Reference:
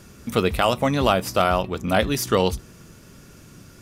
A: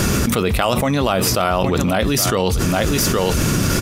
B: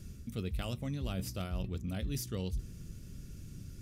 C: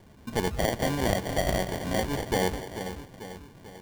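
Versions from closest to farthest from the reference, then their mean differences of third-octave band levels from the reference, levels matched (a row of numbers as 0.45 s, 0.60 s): B, C, A; 6.0 dB, 8.5 dB, 12.0 dB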